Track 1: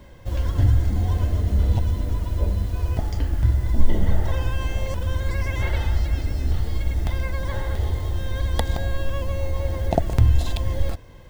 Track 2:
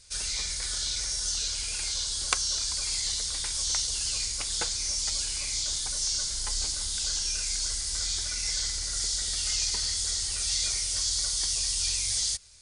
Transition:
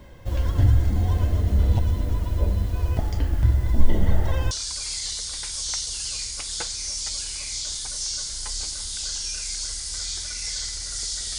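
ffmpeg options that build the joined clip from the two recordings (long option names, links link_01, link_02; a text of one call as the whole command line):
ffmpeg -i cue0.wav -i cue1.wav -filter_complex "[0:a]apad=whole_dur=11.38,atrim=end=11.38,atrim=end=4.512[link_01];[1:a]atrim=start=2.518:end=9.39[link_02];[link_01][link_02]acrossfade=duration=0.004:curve1=hsin:curve2=hsin" out.wav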